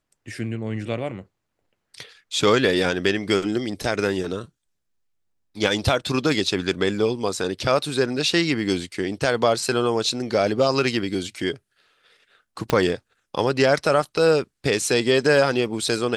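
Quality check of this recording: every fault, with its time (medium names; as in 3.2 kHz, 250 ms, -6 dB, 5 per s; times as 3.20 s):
12.70 s: pop -6 dBFS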